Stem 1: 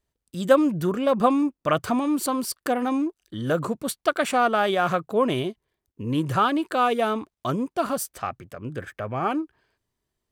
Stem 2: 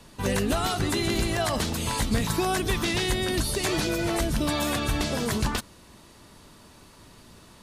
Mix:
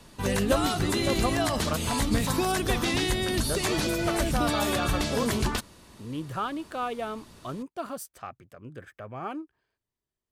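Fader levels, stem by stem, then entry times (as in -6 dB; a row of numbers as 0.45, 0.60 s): -10.0, -1.0 dB; 0.00, 0.00 s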